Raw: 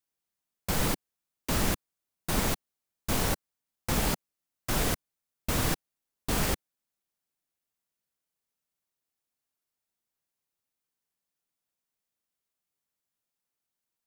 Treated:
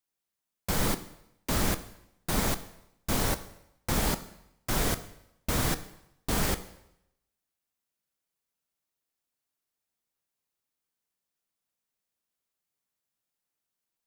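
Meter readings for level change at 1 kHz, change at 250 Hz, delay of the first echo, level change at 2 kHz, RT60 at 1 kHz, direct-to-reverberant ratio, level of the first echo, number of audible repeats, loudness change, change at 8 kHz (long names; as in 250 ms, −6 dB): +0.5 dB, +0.5 dB, no echo audible, 0.0 dB, 0.85 s, 11.0 dB, no echo audible, no echo audible, 0.0 dB, +0.5 dB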